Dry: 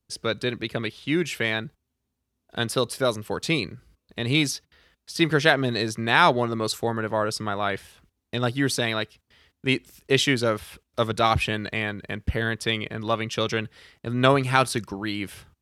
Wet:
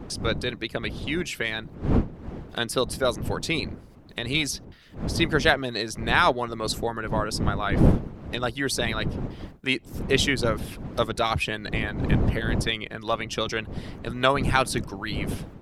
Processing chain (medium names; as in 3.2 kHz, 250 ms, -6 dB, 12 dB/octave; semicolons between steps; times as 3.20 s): wind noise 210 Hz -27 dBFS; harmonic-percussive split percussive +9 dB; tape noise reduction on one side only encoder only; trim -9 dB